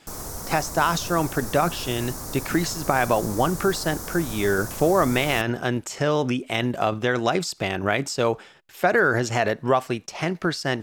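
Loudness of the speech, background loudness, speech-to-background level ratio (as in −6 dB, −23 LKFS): −24.0 LKFS, −33.5 LKFS, 9.5 dB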